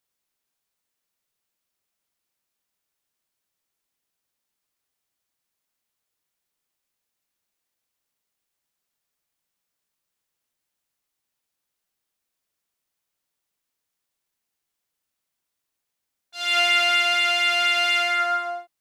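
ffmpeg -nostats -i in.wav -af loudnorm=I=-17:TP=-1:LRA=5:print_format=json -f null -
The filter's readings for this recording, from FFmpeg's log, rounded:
"input_i" : "-19.2",
"input_tp" : "-7.8",
"input_lra" : "4.5",
"input_thresh" : "-29.7",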